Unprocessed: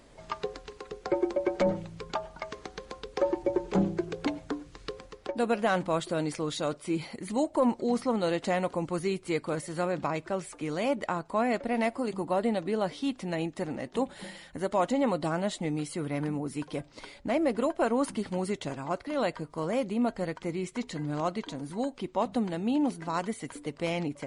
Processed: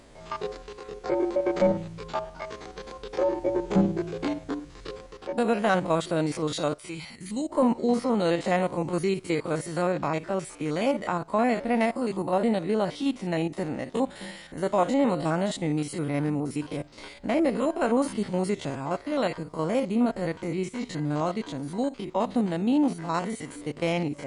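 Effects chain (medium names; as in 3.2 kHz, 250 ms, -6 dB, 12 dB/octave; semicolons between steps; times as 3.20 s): spectrogram pixelated in time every 50 ms; 6.74–7.49 s: peaking EQ 180 Hz -> 1 kHz -14.5 dB 2 oct; trim +5 dB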